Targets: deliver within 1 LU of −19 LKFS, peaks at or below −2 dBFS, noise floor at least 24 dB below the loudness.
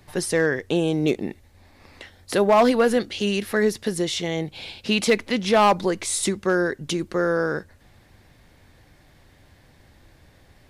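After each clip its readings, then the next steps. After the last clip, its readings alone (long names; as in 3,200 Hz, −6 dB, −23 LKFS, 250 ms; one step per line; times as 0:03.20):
share of clipped samples 0.3%; peaks flattened at −10.5 dBFS; integrated loudness −22.5 LKFS; sample peak −10.5 dBFS; target loudness −19.0 LKFS
→ clipped peaks rebuilt −10.5 dBFS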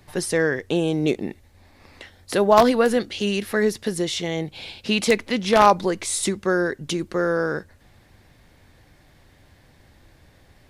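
share of clipped samples 0.0%; integrated loudness −21.5 LKFS; sample peak −1.5 dBFS; target loudness −19.0 LKFS
→ level +2.5 dB
brickwall limiter −2 dBFS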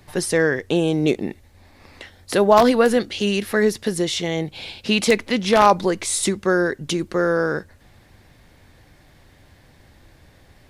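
integrated loudness −19.5 LKFS; sample peak −2.0 dBFS; background noise floor −53 dBFS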